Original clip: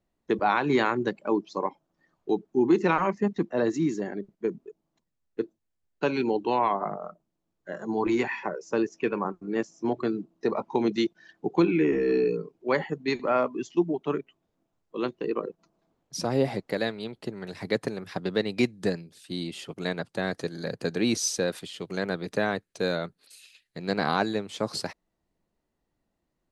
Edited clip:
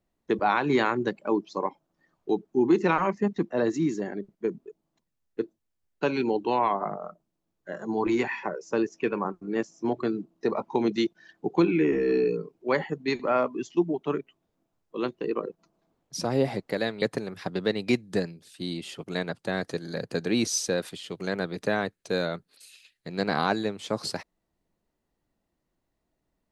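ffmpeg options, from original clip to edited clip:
ffmpeg -i in.wav -filter_complex "[0:a]asplit=2[link_01][link_02];[link_01]atrim=end=17.022[link_03];[link_02]atrim=start=17.718[link_04];[link_03][link_04]acrossfade=duration=0.004:curve1=hsin:curve2=hsin" out.wav

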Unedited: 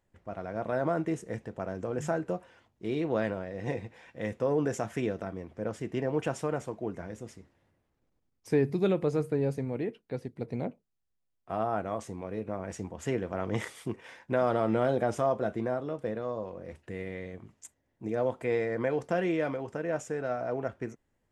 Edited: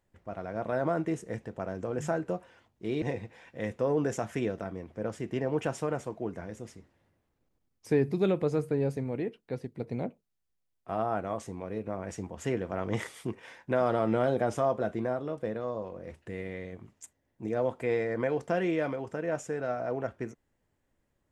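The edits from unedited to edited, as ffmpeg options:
ffmpeg -i in.wav -filter_complex "[0:a]asplit=2[link_01][link_02];[link_01]atrim=end=3.022[link_03];[link_02]atrim=start=3.628[link_04];[link_03][link_04]acrossfade=duration=0.004:curve1=hsin:curve2=hsin" out.wav

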